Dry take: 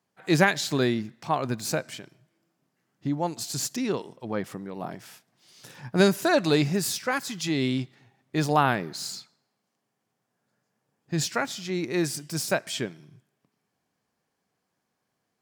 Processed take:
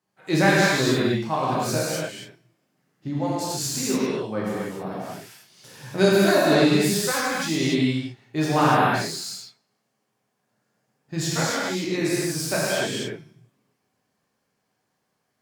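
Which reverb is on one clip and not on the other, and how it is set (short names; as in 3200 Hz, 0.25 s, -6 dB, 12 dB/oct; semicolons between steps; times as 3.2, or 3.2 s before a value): non-linear reverb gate 0.32 s flat, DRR -8 dB; gain -4 dB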